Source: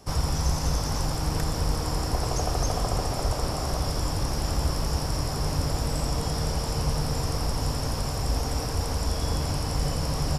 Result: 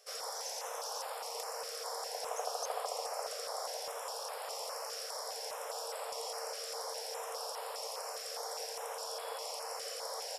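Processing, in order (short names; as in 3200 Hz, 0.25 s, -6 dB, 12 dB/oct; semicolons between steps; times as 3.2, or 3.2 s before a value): brick-wall FIR high-pass 430 Hz; stepped notch 4.9 Hz 920–6000 Hz; gain -6 dB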